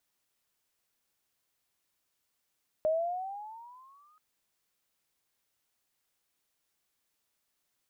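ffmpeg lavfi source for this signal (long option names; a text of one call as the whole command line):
ffmpeg -f lavfi -i "aevalsrc='pow(10,(-23.5-38*t/1.33)/20)*sin(2*PI*615*1.33/(12.5*log(2)/12)*(exp(12.5*log(2)/12*t/1.33)-1))':duration=1.33:sample_rate=44100" out.wav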